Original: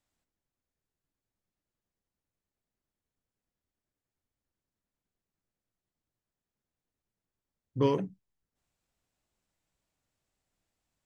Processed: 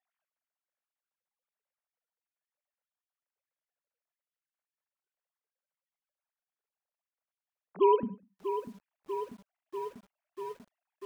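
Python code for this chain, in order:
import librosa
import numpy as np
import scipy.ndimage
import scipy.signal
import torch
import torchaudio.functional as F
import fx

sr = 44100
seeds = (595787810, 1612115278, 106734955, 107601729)

y = fx.sine_speech(x, sr)
y = fx.bandpass_edges(y, sr, low_hz=fx.steps((0.0, 510.0), (8.03, 150.0)), high_hz=2900.0)
y = fx.echo_feedback(y, sr, ms=100, feedback_pct=33, wet_db=-23.0)
y = fx.echo_crushed(y, sr, ms=642, feedback_pct=80, bits=10, wet_db=-10.0)
y = y * librosa.db_to_amplitude(7.5)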